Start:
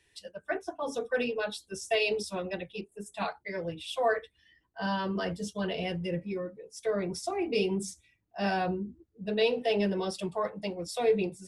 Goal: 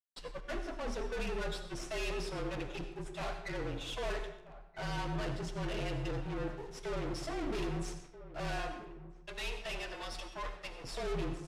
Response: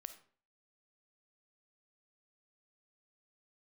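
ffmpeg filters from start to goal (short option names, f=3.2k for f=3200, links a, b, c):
-filter_complex "[0:a]asettb=1/sr,asplit=3[a][b][c];[a]atrim=end=8.584[d];[b]atrim=start=8.58:end=10.84,asetpts=PTS-STARTPTS,afade=t=in:d=0.004:c=qsin,afade=t=out:st=2.256:d=0.004:c=qsin,highpass=1.2k[e];[c]atrim=start=10.836[f];[d][e]acrossfade=d=0.004:c1=hsin:c2=qsin[g];[g][f]acrossfade=d=0.004:c1=qsin:c2=hsin,agate=range=-33dB:threshold=-54dB:ratio=3:detection=peak,acontrast=69,asoftclip=type=tanh:threshold=-30.5dB,acrusher=bits=6:dc=4:mix=0:aa=0.000001,adynamicsmooth=sensitivity=7.5:basefreq=5k,afreqshift=-37,asplit=2[h][i];[i]adelay=1283,volume=-14dB,highshelf=f=4k:g=-28.9[j];[h][j]amix=inputs=2:normalize=0[k];[1:a]atrim=start_sample=2205,asetrate=24696,aresample=44100[l];[k][l]afir=irnorm=-1:irlink=0,volume=2.5dB"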